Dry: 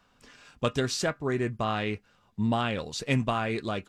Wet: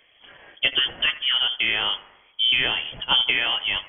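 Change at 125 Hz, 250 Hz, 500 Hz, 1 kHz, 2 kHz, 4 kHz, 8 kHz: −15.0 dB, −13.0 dB, −8.5 dB, −1.0 dB, +11.5 dB, +19.0 dB, below −40 dB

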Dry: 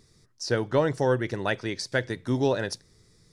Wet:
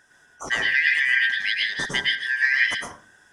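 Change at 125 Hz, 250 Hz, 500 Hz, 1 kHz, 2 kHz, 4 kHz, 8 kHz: −16.5, −14.5, −17.0, −5.5, +15.5, +12.0, +1.5 decibels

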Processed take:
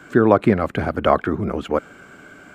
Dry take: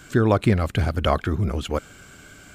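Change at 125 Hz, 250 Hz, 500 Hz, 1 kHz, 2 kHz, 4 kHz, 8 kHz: −4.5 dB, +4.5 dB, +6.0 dB, +5.5 dB, +3.5 dB, −4.0 dB, can't be measured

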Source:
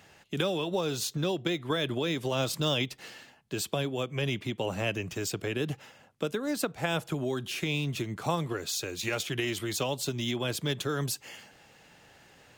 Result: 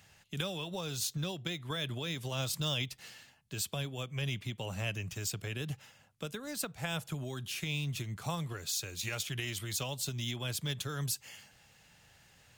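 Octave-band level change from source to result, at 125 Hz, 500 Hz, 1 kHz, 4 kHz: −2.5, −11.5, −8.5, −3.5 decibels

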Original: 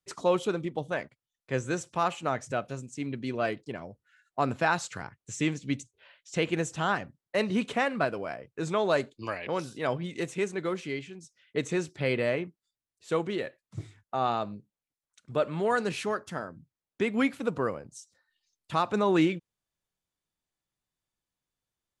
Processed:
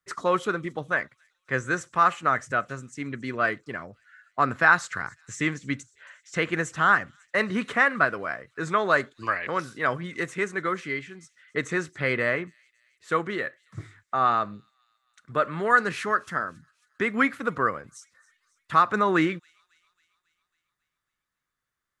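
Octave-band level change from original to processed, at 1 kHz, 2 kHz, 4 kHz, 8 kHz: +7.0, +10.5, 0.0, 0.0 decibels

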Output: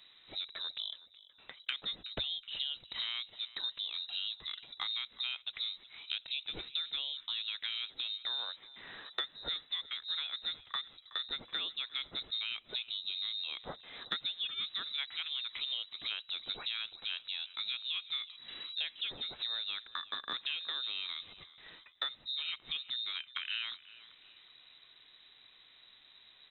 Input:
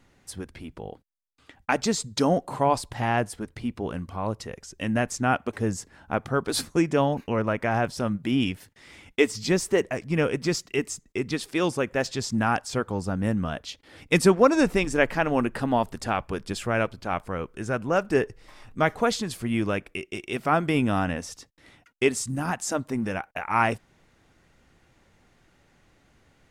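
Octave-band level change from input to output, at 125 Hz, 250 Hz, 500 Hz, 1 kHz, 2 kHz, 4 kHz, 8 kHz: below −30 dB, −35.5 dB, −32.5 dB, −23.0 dB, −13.5 dB, +4.0 dB, below −40 dB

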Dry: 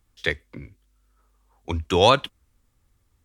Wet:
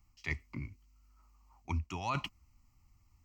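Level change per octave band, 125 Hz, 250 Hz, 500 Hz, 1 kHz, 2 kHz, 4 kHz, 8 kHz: −8.5, −13.5, −27.0, −16.5, −12.5, −21.0, −16.0 decibels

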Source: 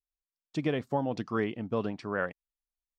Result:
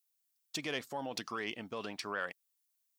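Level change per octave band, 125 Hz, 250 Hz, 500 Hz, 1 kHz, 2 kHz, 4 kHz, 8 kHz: −16.0 dB, −12.0 dB, −10.0 dB, −5.5 dB, −2.0 dB, +6.0 dB, can't be measured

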